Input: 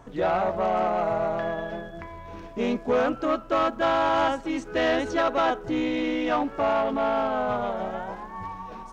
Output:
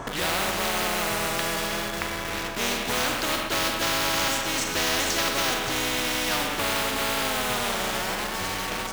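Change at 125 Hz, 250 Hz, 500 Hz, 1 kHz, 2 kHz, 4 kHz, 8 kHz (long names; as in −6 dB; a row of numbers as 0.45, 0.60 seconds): +3.0 dB, −4.5 dB, −6.0 dB, −2.5 dB, +6.5 dB, +13.0 dB, can't be measured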